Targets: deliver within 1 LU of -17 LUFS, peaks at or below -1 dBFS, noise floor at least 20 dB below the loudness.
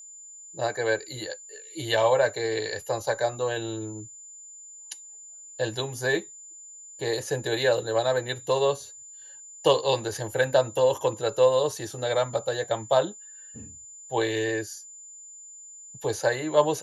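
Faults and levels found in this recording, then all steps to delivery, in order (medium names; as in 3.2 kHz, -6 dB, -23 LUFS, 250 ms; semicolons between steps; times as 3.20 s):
steady tone 7.1 kHz; tone level -43 dBFS; loudness -26.5 LUFS; peak level -7.5 dBFS; loudness target -17.0 LUFS
-> band-stop 7.1 kHz, Q 30; trim +9.5 dB; peak limiter -1 dBFS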